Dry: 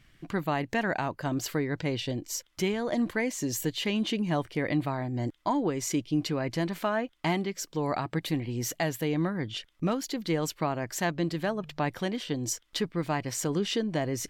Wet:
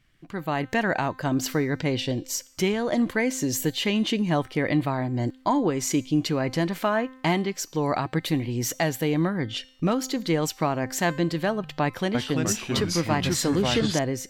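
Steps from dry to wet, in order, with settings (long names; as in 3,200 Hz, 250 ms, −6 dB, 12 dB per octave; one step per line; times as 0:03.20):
automatic gain control gain up to 10.5 dB
tuned comb filter 260 Hz, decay 0.71 s, mix 50%
0:11.84–0:13.99: delay with pitch and tempo change per echo 304 ms, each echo −3 semitones, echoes 3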